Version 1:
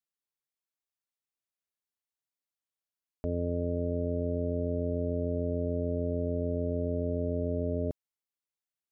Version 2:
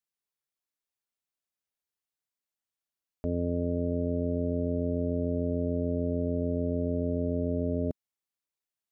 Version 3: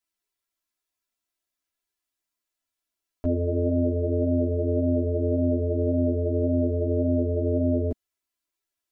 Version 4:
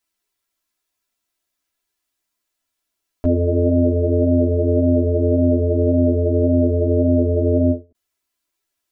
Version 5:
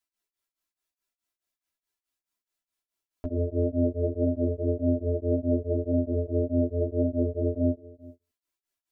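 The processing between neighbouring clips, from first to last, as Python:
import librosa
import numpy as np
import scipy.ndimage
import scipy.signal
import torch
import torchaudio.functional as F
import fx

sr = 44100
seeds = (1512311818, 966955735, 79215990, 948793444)

y1 = fx.dynamic_eq(x, sr, hz=220.0, q=1.6, threshold_db=-45.0, ratio=4.0, max_db=5)
y2 = y1 + 0.79 * np.pad(y1, (int(3.0 * sr / 1000.0), 0))[:len(y1)]
y2 = fx.ensemble(y2, sr)
y2 = y2 * 10.0 ** (6.5 / 20.0)
y3 = fx.end_taper(y2, sr, db_per_s=260.0)
y3 = y3 * 10.0 ** (7.5 / 20.0)
y4 = y3 + 10.0 ** (-21.0 / 20.0) * np.pad(y3, (int(387 * sr / 1000.0), 0))[:len(y3)]
y4 = y4 * np.abs(np.cos(np.pi * 4.7 * np.arange(len(y4)) / sr))
y4 = y4 * 10.0 ** (-7.0 / 20.0)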